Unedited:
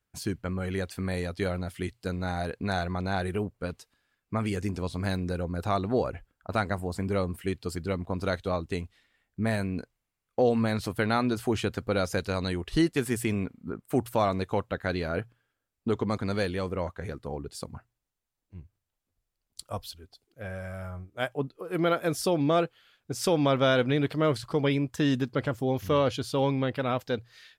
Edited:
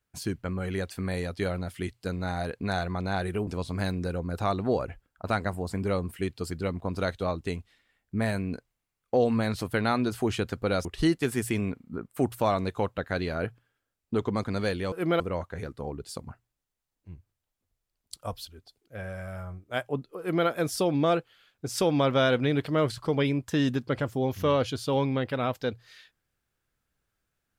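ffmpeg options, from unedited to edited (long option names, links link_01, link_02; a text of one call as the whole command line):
ffmpeg -i in.wav -filter_complex "[0:a]asplit=5[link_01][link_02][link_03][link_04][link_05];[link_01]atrim=end=3.472[link_06];[link_02]atrim=start=4.718:end=12.102[link_07];[link_03]atrim=start=12.588:end=16.662[link_08];[link_04]atrim=start=21.648:end=21.932[link_09];[link_05]atrim=start=16.658[link_10];[link_06][link_07]acrossfade=duration=0.004:curve1=hsin:curve2=hsin[link_11];[link_11][link_08]acrossfade=duration=0.004:curve1=hsin:curve2=hsin[link_12];[link_12][link_09]acrossfade=duration=0.004:curve1=hsin:curve2=hsin[link_13];[link_13][link_10]acrossfade=duration=0.004:curve1=hsin:curve2=hsin" out.wav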